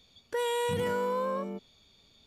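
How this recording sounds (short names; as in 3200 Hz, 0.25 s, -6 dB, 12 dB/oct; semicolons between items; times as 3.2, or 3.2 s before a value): noise floor -65 dBFS; spectral tilt -4.5 dB/oct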